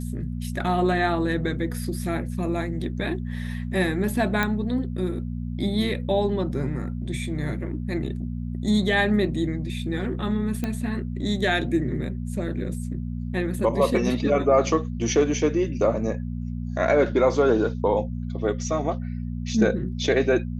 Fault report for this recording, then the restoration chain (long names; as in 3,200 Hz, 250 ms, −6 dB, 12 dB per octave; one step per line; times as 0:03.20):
mains hum 60 Hz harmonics 4 −30 dBFS
0:04.43: click −9 dBFS
0:10.64: click −14 dBFS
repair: click removal
hum removal 60 Hz, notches 4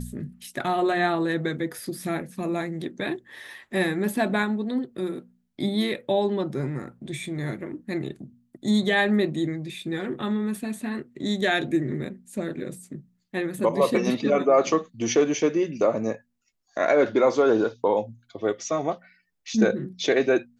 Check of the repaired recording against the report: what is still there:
none of them is left